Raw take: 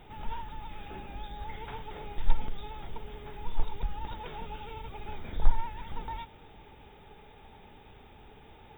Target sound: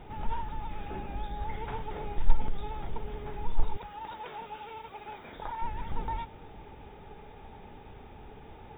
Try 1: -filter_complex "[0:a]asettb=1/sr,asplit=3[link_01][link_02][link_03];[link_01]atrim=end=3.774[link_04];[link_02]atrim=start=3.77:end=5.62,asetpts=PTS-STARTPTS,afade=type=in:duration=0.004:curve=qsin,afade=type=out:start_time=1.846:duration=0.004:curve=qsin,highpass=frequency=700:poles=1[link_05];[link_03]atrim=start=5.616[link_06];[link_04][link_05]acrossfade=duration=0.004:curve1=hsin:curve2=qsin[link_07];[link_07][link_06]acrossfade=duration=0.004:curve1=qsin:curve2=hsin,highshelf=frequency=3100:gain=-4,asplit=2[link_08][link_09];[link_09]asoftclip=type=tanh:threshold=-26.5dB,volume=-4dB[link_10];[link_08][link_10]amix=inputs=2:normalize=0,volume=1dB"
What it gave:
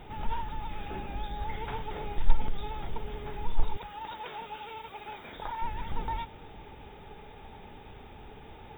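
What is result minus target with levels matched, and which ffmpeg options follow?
4,000 Hz band +4.5 dB
-filter_complex "[0:a]asettb=1/sr,asplit=3[link_01][link_02][link_03];[link_01]atrim=end=3.774[link_04];[link_02]atrim=start=3.77:end=5.62,asetpts=PTS-STARTPTS,afade=type=in:duration=0.004:curve=qsin,afade=type=out:start_time=1.846:duration=0.004:curve=qsin,highpass=frequency=700:poles=1[link_05];[link_03]atrim=start=5.616[link_06];[link_04][link_05]acrossfade=duration=0.004:curve1=hsin:curve2=qsin[link_07];[link_07][link_06]acrossfade=duration=0.004:curve1=qsin:curve2=hsin,highshelf=frequency=3100:gain=-13.5,asplit=2[link_08][link_09];[link_09]asoftclip=type=tanh:threshold=-26.5dB,volume=-4dB[link_10];[link_08][link_10]amix=inputs=2:normalize=0,volume=1dB"

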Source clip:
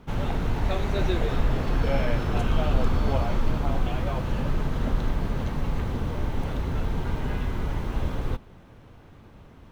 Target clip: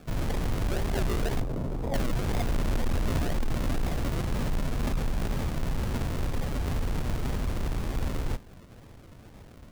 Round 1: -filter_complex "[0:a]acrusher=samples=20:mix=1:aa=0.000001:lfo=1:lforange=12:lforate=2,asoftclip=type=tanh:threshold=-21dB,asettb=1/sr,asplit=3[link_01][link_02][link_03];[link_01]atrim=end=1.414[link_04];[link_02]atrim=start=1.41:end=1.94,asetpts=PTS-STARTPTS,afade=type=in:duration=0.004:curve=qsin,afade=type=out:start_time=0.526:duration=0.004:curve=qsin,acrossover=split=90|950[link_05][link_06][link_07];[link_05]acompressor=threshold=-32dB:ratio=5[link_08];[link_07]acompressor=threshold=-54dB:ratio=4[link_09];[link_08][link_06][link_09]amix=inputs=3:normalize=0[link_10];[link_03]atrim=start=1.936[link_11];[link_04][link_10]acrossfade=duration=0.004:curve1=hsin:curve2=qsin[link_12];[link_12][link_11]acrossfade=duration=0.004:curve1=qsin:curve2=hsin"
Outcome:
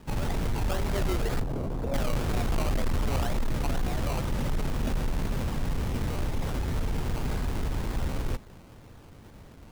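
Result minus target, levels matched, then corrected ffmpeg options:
sample-and-hold swept by an LFO: distortion −4 dB
-filter_complex "[0:a]acrusher=samples=43:mix=1:aa=0.000001:lfo=1:lforange=25.8:lforate=2,asoftclip=type=tanh:threshold=-21dB,asettb=1/sr,asplit=3[link_01][link_02][link_03];[link_01]atrim=end=1.414[link_04];[link_02]atrim=start=1.41:end=1.94,asetpts=PTS-STARTPTS,afade=type=in:duration=0.004:curve=qsin,afade=type=out:start_time=0.526:duration=0.004:curve=qsin,acrossover=split=90|950[link_05][link_06][link_07];[link_05]acompressor=threshold=-32dB:ratio=5[link_08];[link_07]acompressor=threshold=-54dB:ratio=4[link_09];[link_08][link_06][link_09]amix=inputs=3:normalize=0[link_10];[link_03]atrim=start=1.936[link_11];[link_04][link_10]acrossfade=duration=0.004:curve1=hsin:curve2=qsin[link_12];[link_12][link_11]acrossfade=duration=0.004:curve1=qsin:curve2=hsin"

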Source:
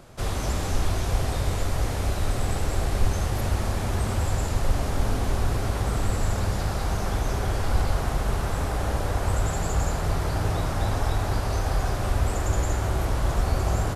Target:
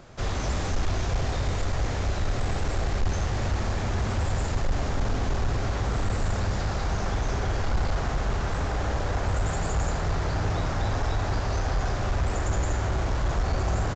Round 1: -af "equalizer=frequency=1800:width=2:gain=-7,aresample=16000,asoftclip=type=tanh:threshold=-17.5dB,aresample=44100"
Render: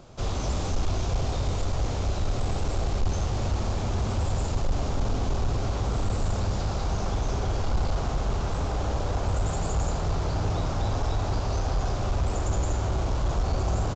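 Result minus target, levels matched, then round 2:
2,000 Hz band −6.0 dB
-af "equalizer=frequency=1800:width=2:gain=2.5,aresample=16000,asoftclip=type=tanh:threshold=-17.5dB,aresample=44100"

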